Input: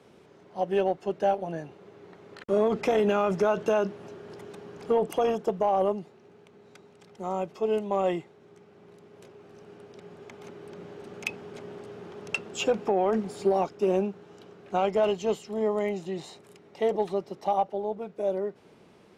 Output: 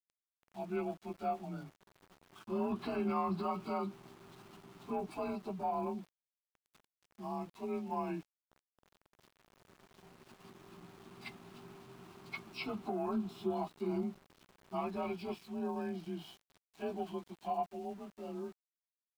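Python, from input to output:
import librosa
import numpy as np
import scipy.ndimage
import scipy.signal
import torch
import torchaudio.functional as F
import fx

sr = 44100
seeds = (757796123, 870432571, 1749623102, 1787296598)

y = fx.partial_stretch(x, sr, pct=91)
y = fx.fixed_phaser(y, sr, hz=1900.0, stages=6)
y = np.where(np.abs(y) >= 10.0 ** (-52.5 / 20.0), y, 0.0)
y = y * 10.0 ** (-3.0 / 20.0)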